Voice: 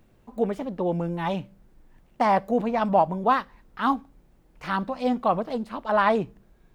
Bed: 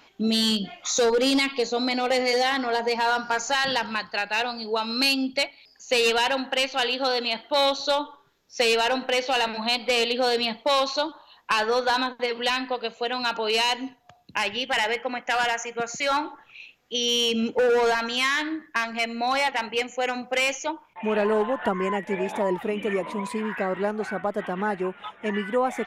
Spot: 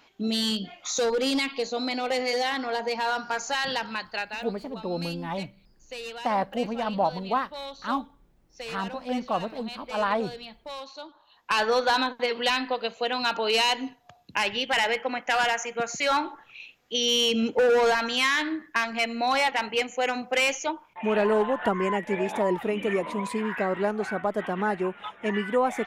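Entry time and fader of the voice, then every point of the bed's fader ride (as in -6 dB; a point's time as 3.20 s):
4.05 s, -5.0 dB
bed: 4.22 s -4 dB
4.51 s -16.5 dB
10.97 s -16.5 dB
11.60 s 0 dB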